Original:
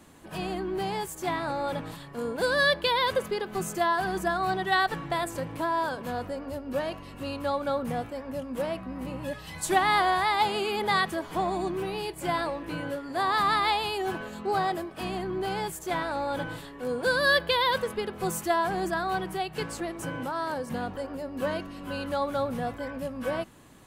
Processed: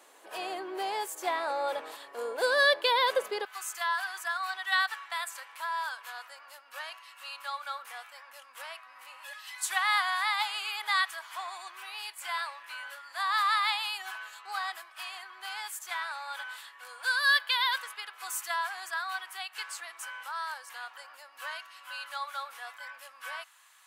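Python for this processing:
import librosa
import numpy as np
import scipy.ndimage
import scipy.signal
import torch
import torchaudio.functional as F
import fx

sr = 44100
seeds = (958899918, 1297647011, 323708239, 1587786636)

y = fx.highpass(x, sr, hz=fx.steps((0.0, 450.0), (3.45, 1100.0)), slope=24)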